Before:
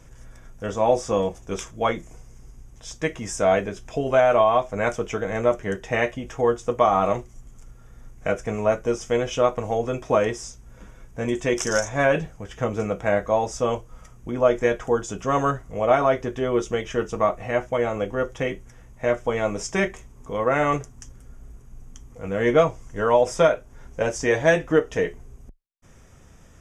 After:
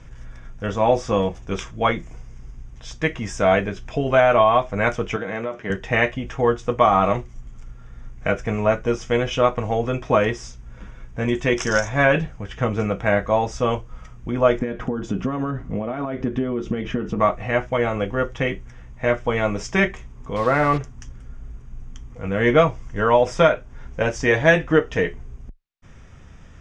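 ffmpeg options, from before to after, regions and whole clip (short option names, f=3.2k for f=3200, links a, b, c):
-filter_complex "[0:a]asettb=1/sr,asplit=3[a][b][c];[a]atrim=end=5.164[d];[b]atrim=start=5.16:end=5.7,asetpts=PTS-STARTPTS,afade=t=in:d=0.004:c=qsin,afade=t=out:st=0.536:d=0.004:c=qsin,agate=range=-33dB:threshold=-38dB:ratio=3:release=100:detection=peak,acompressor=threshold=-25dB:ratio=5:attack=3.2:release=140:knee=1:detection=peak,highpass=180,lowpass=5.9k[e];[c]atrim=start=5.696[f];[d][e]acrossfade=d=0.004:c1=hsin:c2=qsin[g];[g][f]acrossfade=d=0.004:c1=qsin:c2=hsin,asettb=1/sr,asplit=3[h][i][j];[h]atrim=end=14.594[k];[i]atrim=start=14.59:end=17.2,asetpts=PTS-STARTPTS,afade=t=in:d=0.004:c=qsin,afade=t=out:st=2.606:d=0.004:c=qsin,acompressor=threshold=-30dB:ratio=8:attack=3.2:release=140:knee=1:detection=peak,lowpass=f=3.3k:p=1,equalizer=f=240:w=0.97:g=12.5[l];[j]atrim=start=17.196[m];[k][l]acrossfade=d=0.004:c1=hsin:c2=qsin[n];[n][m]acrossfade=d=0.004:c1=qsin:c2=hsin,asettb=1/sr,asplit=3[o][p][q];[o]atrim=end=20.364[r];[p]atrim=start=20.36:end=20.78,asetpts=PTS-STARTPTS,afade=t=in:d=0.004:c=qsin,afade=t=out:st=0.416:d=0.004:c=qsin,lowpass=1.9k,acrusher=bits=5:mix=0:aa=0.5[s];[q]atrim=start=20.776[t];[r][s]acrossfade=d=0.004:c1=hsin:c2=qsin[u];[u][t]acrossfade=d=0.004:c1=qsin:c2=hsin,lowpass=3.8k,equalizer=f=520:w=0.6:g=-6,volume=7dB"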